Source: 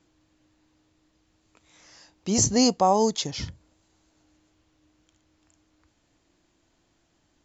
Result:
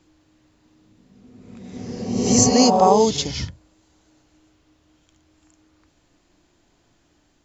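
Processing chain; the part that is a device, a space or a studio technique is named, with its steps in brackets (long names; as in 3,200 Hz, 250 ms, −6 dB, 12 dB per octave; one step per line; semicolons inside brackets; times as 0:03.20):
reverse reverb (reversed playback; convolution reverb RT60 1.7 s, pre-delay 35 ms, DRR 3 dB; reversed playback)
level +4 dB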